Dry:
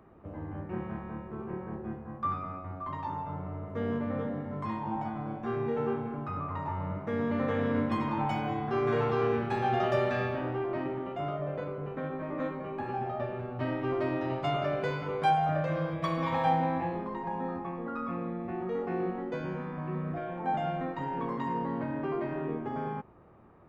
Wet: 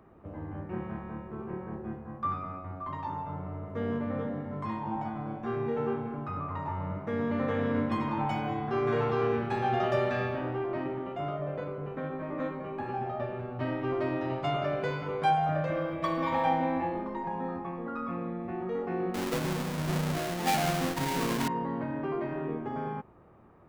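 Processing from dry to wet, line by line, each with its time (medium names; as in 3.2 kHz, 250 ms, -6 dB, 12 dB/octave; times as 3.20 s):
15.70–17.27 s: comb 3.4 ms, depth 54%
19.14–21.48 s: square wave that keeps the level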